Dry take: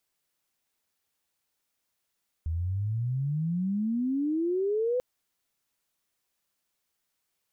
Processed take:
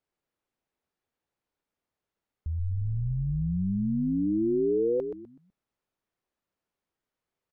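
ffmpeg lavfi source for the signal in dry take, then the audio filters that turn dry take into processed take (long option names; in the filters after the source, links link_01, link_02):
-f lavfi -i "aevalsrc='pow(10,(-27+3*t/2.54)/20)*sin(2*PI*78*2.54/log(510/78)*(exp(log(510/78)*t/2.54)-1))':duration=2.54:sample_rate=44100"
-filter_complex "[0:a]lowpass=frequency=1000:poles=1,equalizer=frequency=400:width=1.5:gain=2.5,asplit=2[link_01][link_02];[link_02]asplit=4[link_03][link_04][link_05][link_06];[link_03]adelay=125,afreqshift=-79,volume=-7dB[link_07];[link_04]adelay=250,afreqshift=-158,volume=-17.2dB[link_08];[link_05]adelay=375,afreqshift=-237,volume=-27.3dB[link_09];[link_06]adelay=500,afreqshift=-316,volume=-37.5dB[link_10];[link_07][link_08][link_09][link_10]amix=inputs=4:normalize=0[link_11];[link_01][link_11]amix=inputs=2:normalize=0"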